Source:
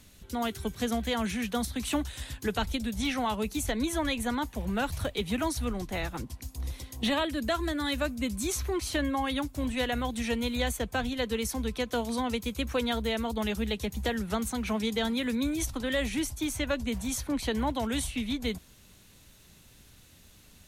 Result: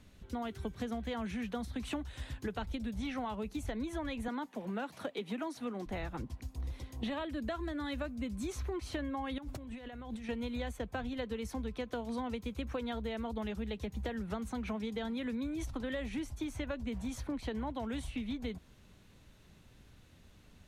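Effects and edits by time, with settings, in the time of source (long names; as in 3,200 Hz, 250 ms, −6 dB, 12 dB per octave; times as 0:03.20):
0:04.28–0:05.86: high-pass filter 200 Hz 24 dB per octave
0:09.38–0:10.29: compressor whose output falls as the input rises −42 dBFS
whole clip: low-pass filter 1,800 Hz 6 dB per octave; downward compressor, threshold −33 dBFS; level −1.5 dB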